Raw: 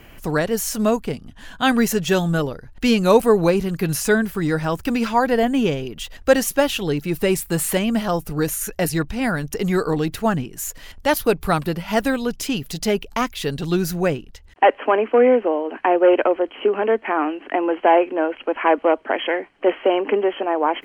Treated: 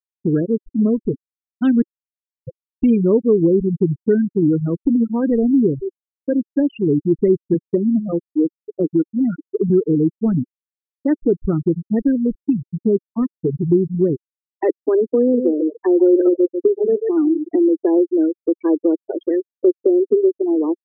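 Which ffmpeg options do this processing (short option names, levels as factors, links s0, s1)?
-filter_complex "[0:a]asettb=1/sr,asplit=3[s0][s1][s2];[s0]atrim=end=7.544[s3];[s1]atrim=start=7.54:end=9.7,asetpts=PTS-STARTPTS,afade=t=in:d=0.004:c=qsin,afade=t=out:st=2.156:d=0.004:c=qsin,highpass=200,lowpass=2500[s4];[s2]atrim=start=9.696[s5];[s3][s4]acrossfade=d=0.004:c1=hsin:c2=qsin[s6];[s6][s5]acrossfade=d=0.004:c1=qsin:c2=hsin,asettb=1/sr,asplit=3[s7][s8][s9];[s7]atrim=end=15.204[s10];[s8]atrim=start=15.2:end=17.66,asetpts=PTS-STARTPTS,afade=t=in:d=0.004:c=qsin,afade=t=out:st=2.456:d=0.004:c=qsin,aecho=1:1:140|280|420:0.422|0.0886|0.0186,atrim=end_sample=108486[s11];[s9]atrim=start=17.656[s12];[s10][s11]acrossfade=d=0.004:c1=hsin:c2=qsin[s13];[s13][s12]acrossfade=d=0.004:c1=qsin:c2=hsin,asplit=4[s14][s15][s16][s17];[s14]atrim=end=1.82,asetpts=PTS-STARTPTS,afade=t=out:st=1.816:d=0.004:c=hsin[s18];[s15]atrim=start=1.82:end=2.47,asetpts=PTS-STARTPTS,volume=0[s19];[s16]atrim=start=2.47:end=5.95,asetpts=PTS-STARTPTS,afade=t=in:d=0.004:c=hsin,afade=t=out:st=3.476:d=0.004:c=hsin[s20];[s17]atrim=start=5.95,asetpts=PTS-STARTPTS,afade=t=in:d=0.64[s21];[s18][s19][s20][s21]concat=n=4:v=0:a=1,afftfilt=real='re*gte(hypot(re,im),0.355)':imag='im*gte(hypot(re,im),0.355)':win_size=1024:overlap=0.75,lowshelf=f=520:t=q:w=3:g=13,acompressor=threshold=0.158:ratio=2,volume=0.668"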